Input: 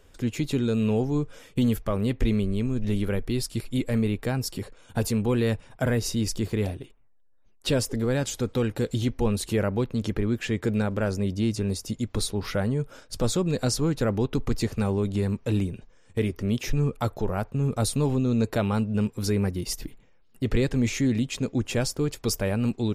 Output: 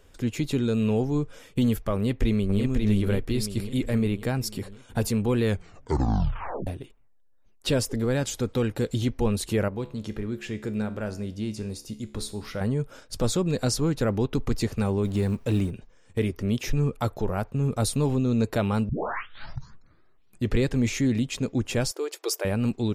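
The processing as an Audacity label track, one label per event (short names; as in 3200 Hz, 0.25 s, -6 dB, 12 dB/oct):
1.950000	2.610000	echo throw 0.54 s, feedback 50%, level -4 dB
5.430000	5.430000	tape stop 1.24 s
9.680000	12.610000	resonator 71 Hz, decay 0.52 s
15.040000	15.710000	G.711 law mismatch coded by mu
18.890000	18.890000	tape start 1.65 s
21.910000	22.450000	brick-wall FIR high-pass 310 Hz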